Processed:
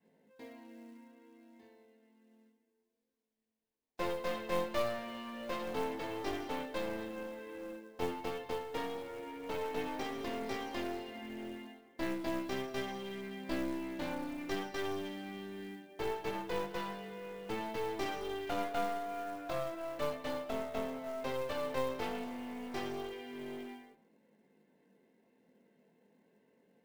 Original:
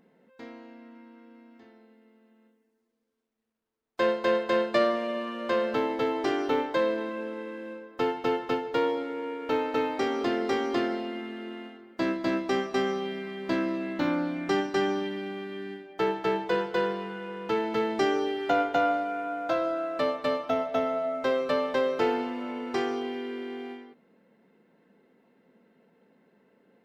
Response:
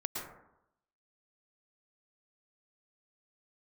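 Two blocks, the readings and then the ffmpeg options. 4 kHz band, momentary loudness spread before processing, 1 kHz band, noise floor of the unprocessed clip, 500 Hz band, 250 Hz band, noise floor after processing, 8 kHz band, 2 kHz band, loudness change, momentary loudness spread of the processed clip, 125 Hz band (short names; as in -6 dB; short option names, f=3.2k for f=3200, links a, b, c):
-8.0 dB, 12 LU, -10.0 dB, -72 dBFS, -11.0 dB, -10.5 dB, -79 dBFS, n/a, -10.0 dB, -10.5 dB, 9 LU, -5.5 dB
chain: -filter_complex "[0:a]adynamicequalizer=threshold=0.0178:dfrequency=350:dqfactor=0.86:tfrequency=350:tqfactor=0.86:attack=5:release=100:ratio=0.375:range=2:mode=cutabove:tftype=bell,flanger=delay=18.5:depth=6.2:speed=0.29,equalizer=f=1.3k:t=o:w=0.25:g=-13.5,acrusher=bits=5:mode=log:mix=0:aa=0.000001,aeval=exprs='clip(val(0),-1,0.0106)':c=same,asplit=2[a][b];[1:a]atrim=start_sample=2205[c];[b][c]afir=irnorm=-1:irlink=0,volume=-18.5dB[d];[a][d]amix=inputs=2:normalize=0,volume=-4dB"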